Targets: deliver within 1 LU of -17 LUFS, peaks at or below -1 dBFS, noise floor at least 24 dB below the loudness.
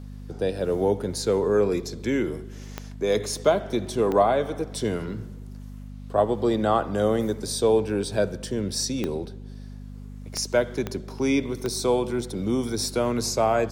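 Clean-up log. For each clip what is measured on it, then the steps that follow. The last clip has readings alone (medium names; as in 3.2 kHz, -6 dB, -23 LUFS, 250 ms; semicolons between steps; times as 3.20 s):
clicks found 6; hum 50 Hz; highest harmonic 250 Hz; hum level -36 dBFS; loudness -25.0 LUFS; peak level -7.5 dBFS; loudness target -17.0 LUFS
-> de-click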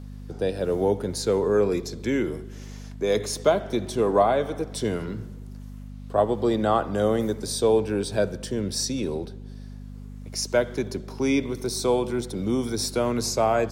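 clicks found 0; hum 50 Hz; highest harmonic 250 Hz; hum level -36 dBFS
-> de-hum 50 Hz, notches 5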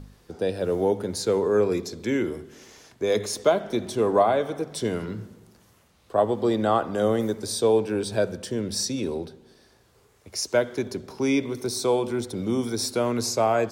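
hum not found; loudness -25.5 LUFS; peak level -8.0 dBFS; loudness target -17.0 LUFS
-> trim +8.5 dB; peak limiter -1 dBFS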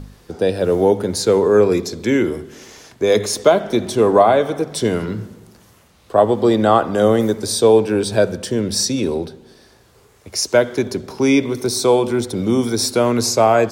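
loudness -17.0 LUFS; peak level -1.0 dBFS; noise floor -51 dBFS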